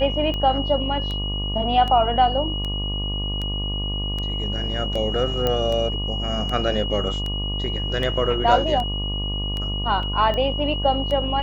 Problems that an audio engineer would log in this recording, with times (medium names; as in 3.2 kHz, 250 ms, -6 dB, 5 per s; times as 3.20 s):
buzz 50 Hz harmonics 24 -27 dBFS
tick 78 rpm -16 dBFS
whine 2.9 kHz -28 dBFS
5.47 s: pop -9 dBFS
10.03 s: dropout 2.1 ms